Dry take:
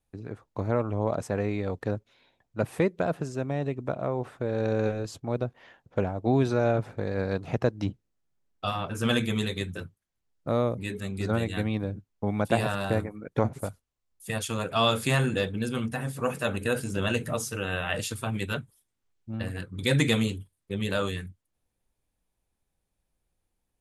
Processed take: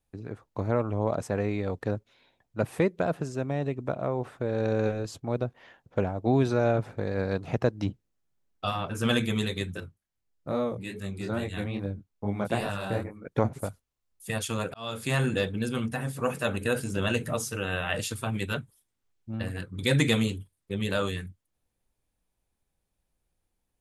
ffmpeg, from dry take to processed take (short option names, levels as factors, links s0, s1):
-filter_complex "[0:a]asettb=1/sr,asplit=3[s0][s1][s2];[s0]atrim=end=9.804[s3];[s1]atrim=start=9.8:end=13.25,asetpts=PTS-STARTPTS,afade=t=in:d=0.004:c=qsin,afade=t=out:st=3.446:d=0.004:c=qsin,flanger=delay=20:depth=6:speed=2.4[s4];[s2]atrim=start=13.246[s5];[s3][s4]acrossfade=d=0.004:c1=hsin:c2=qsin[s6];[s6][s5]acrossfade=d=0.004:c1=qsin:c2=hsin,asplit=2[s7][s8];[s7]atrim=end=14.74,asetpts=PTS-STARTPTS,afade=t=out:st=14.736:d=0.004:c=hsin[s9];[s8]atrim=start=14.74,asetpts=PTS-STARTPTS,afade=t=in:d=0.53[s10];[s9][s10]concat=n=2:v=0:a=1"